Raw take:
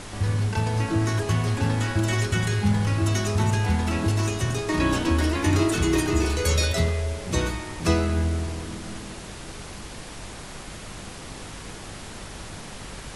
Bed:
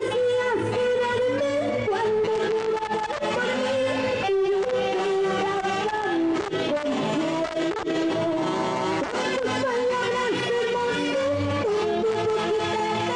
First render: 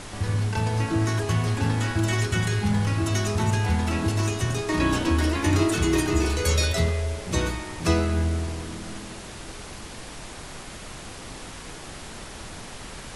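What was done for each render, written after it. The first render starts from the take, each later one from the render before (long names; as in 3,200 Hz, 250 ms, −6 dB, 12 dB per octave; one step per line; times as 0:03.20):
hum removal 50 Hz, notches 11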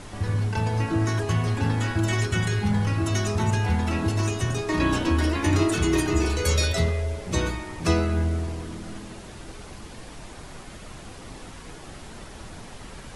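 broadband denoise 6 dB, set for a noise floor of −40 dBFS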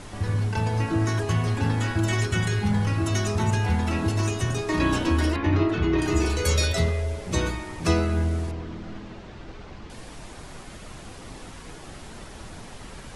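0:05.36–0:06.02: high-frequency loss of the air 270 metres
0:08.51–0:09.90: high-frequency loss of the air 160 metres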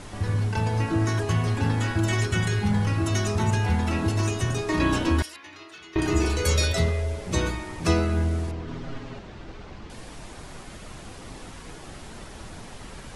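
0:05.22–0:05.96: first difference
0:08.67–0:09.19: comb filter 7.4 ms, depth 97%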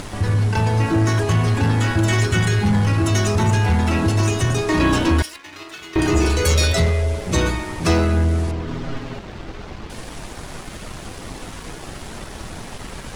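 upward compression, threshold −36 dBFS
leveller curve on the samples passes 2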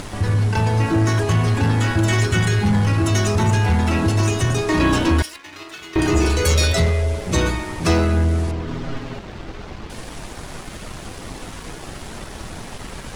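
no processing that can be heard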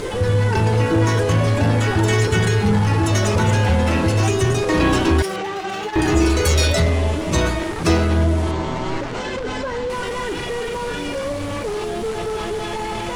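mix in bed −1.5 dB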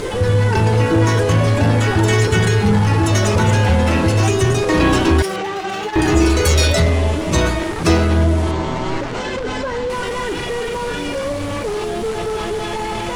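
level +2.5 dB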